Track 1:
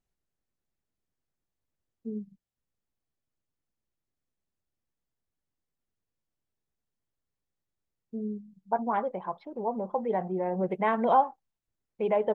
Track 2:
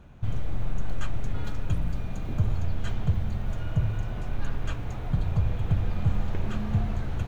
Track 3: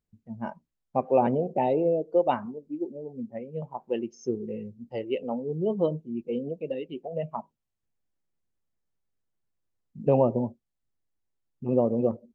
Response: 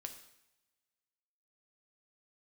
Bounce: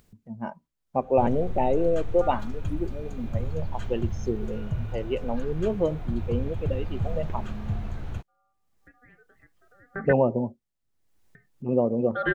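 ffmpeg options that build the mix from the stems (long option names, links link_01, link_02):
-filter_complex "[0:a]equalizer=frequency=980:width=0.44:gain=6,aeval=exprs='val(0)*sin(2*PI*980*n/s)':channel_layout=same,adelay=150,volume=-1.5dB,asplit=3[link_01][link_02][link_03];[link_01]atrim=end=10.13,asetpts=PTS-STARTPTS,afade=type=out:start_time=10.126:duration=0.004:curve=hsin[link_04];[link_02]atrim=start=10.13:end=11.35,asetpts=PTS-STARTPTS,volume=0[link_05];[link_03]atrim=start=11.35,asetpts=PTS-STARTPTS,afade=type=in:duration=0.004:curve=hsin[link_06];[link_04][link_05][link_06]concat=n=3:v=0:a=1[link_07];[1:a]adelay=950,volume=-6.5dB,asplit=2[link_08][link_09];[link_09]volume=-6dB[link_10];[2:a]volume=0.5dB,asplit=2[link_11][link_12];[link_12]apad=whole_len=550819[link_13];[link_07][link_13]sidechaingate=range=-37dB:threshold=-52dB:ratio=16:detection=peak[link_14];[3:a]atrim=start_sample=2205[link_15];[link_10][link_15]afir=irnorm=-1:irlink=0[link_16];[link_14][link_08][link_11][link_16]amix=inputs=4:normalize=0,acompressor=mode=upward:threshold=-45dB:ratio=2.5"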